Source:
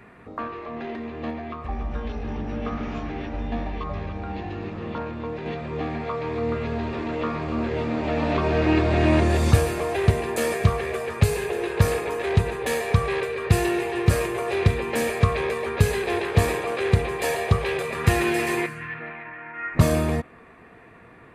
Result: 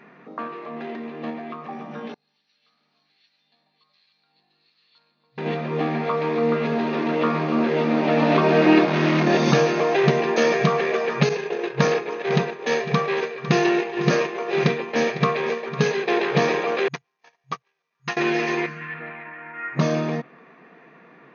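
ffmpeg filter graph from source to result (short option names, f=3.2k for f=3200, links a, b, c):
-filter_complex "[0:a]asettb=1/sr,asplit=3[a][b][c];[a]atrim=end=2.144[d];[b]atrim=start=2.14:end=5.38,asetpts=PTS-STARTPTS,afade=t=in:d=0.004:c=qsin,afade=t=out:st=3.236:d=0.004:c=qsin,bandpass=f=4.3k:t=q:w=13,aeval=exprs='val(0)+0.000282*(sin(2*PI*50*n/s)+sin(2*PI*2*50*n/s)/2+sin(2*PI*3*50*n/s)/3+sin(2*PI*4*50*n/s)/4+sin(2*PI*5*50*n/s)/5)':c=same,acrossover=split=1400[e][f];[e]aeval=exprs='val(0)*(1-0.7/2+0.7/2*cos(2*PI*1.3*n/s))':c=same[g];[f]aeval=exprs='val(0)*(1-0.7/2-0.7/2*cos(2*PI*1.3*n/s))':c=same[h];[g][h]amix=inputs=2:normalize=0[i];[c]atrim=start=5.376[j];[d][i]acrossfade=d=0.004:c1=hsin:c2=qsin[k];[k][j]acrossfade=d=0.004:c1=qsin:c2=hsin,asettb=1/sr,asplit=3[l][m][n];[l]atrim=end=8.854[o];[m]atrim=start=8.85:end=9.27,asetpts=PTS-STARTPTS,afade=t=in:d=0.004:c=qsin,afade=t=out:st=0.416:d=0.004:c=qsin,aeval=exprs='(tanh(12.6*val(0)+0.65)-tanh(0.65))/12.6':c=same,asplit=2[p][q];[q]adelay=25,volume=-3dB[r];[p][r]amix=inputs=2:normalize=0,atrim=end_sample=18522[s];[n]atrim=start=9.266[t];[o][s]acrossfade=d=0.004:c1=hsin:c2=qsin[u];[u][t]acrossfade=d=0.004:c1=qsin:c2=hsin,asettb=1/sr,asplit=3[v][w][x];[v]atrim=end=11.294[y];[w]atrim=start=11.29:end=16.08,asetpts=PTS-STARTPTS,afade=t=in:d=0.004:c=qsin,afade=t=out:st=4.786:d=0.004:c=qsin,agate=range=-33dB:threshold=-22dB:ratio=3:release=100:detection=peak,aecho=1:1:503:0.211,atrim=end_sample=211239[z];[x]atrim=start=16.076[aa];[y][z]acrossfade=d=0.004:c1=hsin:c2=qsin[ab];[ab][aa]acrossfade=d=0.004:c1=qsin:c2=hsin,asettb=1/sr,asplit=3[ac][ad][ae];[ac]atrim=end=16.884[af];[ad]atrim=start=16.88:end=18.17,asetpts=PTS-STARTPTS,afade=t=in:d=0.004:c=qsin,afade=t=out:st=1.286:d=0.004:c=qsin,lowshelf=f=680:t=q:w=1.5:g=-8.5,acrusher=bits=6:dc=4:mix=0:aa=0.000001,agate=range=-49dB:threshold=-23dB:ratio=16:release=100:detection=peak[ag];[ae]atrim=start=18.166[ah];[af][ag]acrossfade=d=0.004:c1=hsin:c2=qsin[ai];[ai][ah]acrossfade=d=0.004:c1=qsin:c2=hsin,afftfilt=real='re*between(b*sr/4096,130,6600)':imag='im*between(b*sr/4096,130,6600)':win_size=4096:overlap=0.75,dynaudnorm=f=290:g=31:m=7dB"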